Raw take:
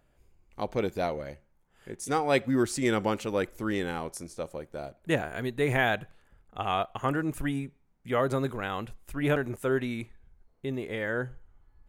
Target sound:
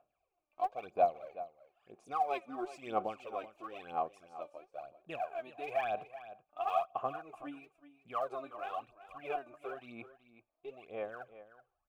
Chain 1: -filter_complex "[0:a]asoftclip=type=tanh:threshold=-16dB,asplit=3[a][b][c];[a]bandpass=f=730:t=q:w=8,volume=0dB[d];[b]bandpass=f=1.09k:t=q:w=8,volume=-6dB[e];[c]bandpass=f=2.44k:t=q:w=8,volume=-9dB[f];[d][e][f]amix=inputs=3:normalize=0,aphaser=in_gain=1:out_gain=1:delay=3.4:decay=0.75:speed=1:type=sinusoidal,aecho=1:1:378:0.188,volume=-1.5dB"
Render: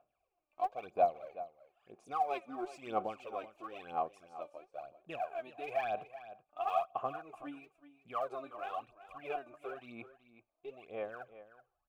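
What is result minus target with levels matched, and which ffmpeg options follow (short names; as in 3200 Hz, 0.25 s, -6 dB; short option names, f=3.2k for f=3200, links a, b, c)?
soft clip: distortion +13 dB
-filter_complex "[0:a]asoftclip=type=tanh:threshold=-8.5dB,asplit=3[a][b][c];[a]bandpass=f=730:t=q:w=8,volume=0dB[d];[b]bandpass=f=1.09k:t=q:w=8,volume=-6dB[e];[c]bandpass=f=2.44k:t=q:w=8,volume=-9dB[f];[d][e][f]amix=inputs=3:normalize=0,aphaser=in_gain=1:out_gain=1:delay=3.4:decay=0.75:speed=1:type=sinusoidal,aecho=1:1:378:0.188,volume=-1.5dB"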